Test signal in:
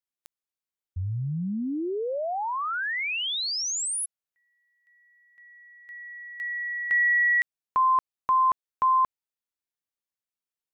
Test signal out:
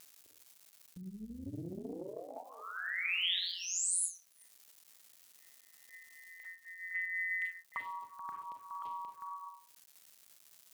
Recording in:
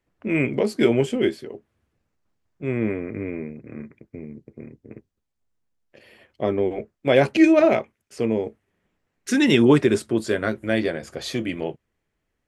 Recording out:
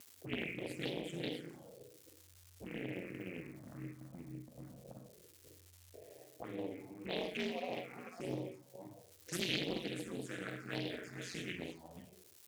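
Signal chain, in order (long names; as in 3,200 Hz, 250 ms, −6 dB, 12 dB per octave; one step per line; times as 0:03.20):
delay that plays each chunk backwards 261 ms, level −12.5 dB
downward compressor 3 to 1, threshold −38 dBFS
four-comb reverb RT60 0.6 s, combs from 32 ms, DRR 1 dB
ring modulation 89 Hz
low-pass that shuts in the quiet parts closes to 350 Hz, open at −31.5 dBFS
phaser swept by the level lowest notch 180 Hz, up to 1,500 Hz, full sweep at −31 dBFS
dynamic equaliser 3,200 Hz, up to +5 dB, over −55 dBFS, Q 1.9
surface crackle 520 per second −62 dBFS
high-pass filter 110 Hz 12 dB per octave
first-order pre-emphasis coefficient 0.8
upward compression, threshold −56 dBFS
highs frequency-modulated by the lows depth 0.37 ms
level +10 dB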